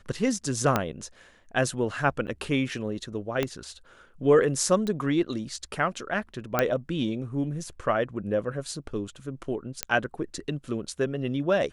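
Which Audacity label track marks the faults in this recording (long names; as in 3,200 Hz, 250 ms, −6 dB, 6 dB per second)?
0.760000	0.760000	click −8 dBFS
2.270000	2.280000	drop-out 7.8 ms
3.430000	3.430000	click −12 dBFS
4.870000	4.870000	click −19 dBFS
6.590000	6.590000	click −8 dBFS
9.830000	9.830000	click −7 dBFS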